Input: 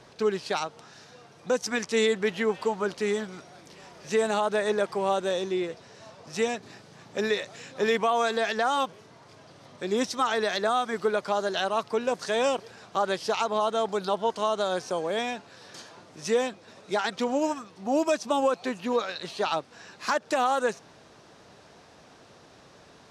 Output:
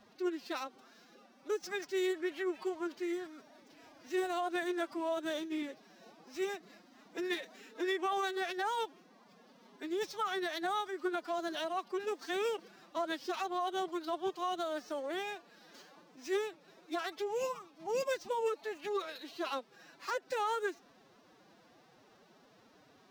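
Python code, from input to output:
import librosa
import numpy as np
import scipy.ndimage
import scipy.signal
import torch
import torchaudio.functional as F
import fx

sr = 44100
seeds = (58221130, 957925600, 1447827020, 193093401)

y = scipy.signal.medfilt(x, 5)
y = fx.pitch_keep_formants(y, sr, semitones=9.0)
y = y * librosa.db_to_amplitude(-9.0)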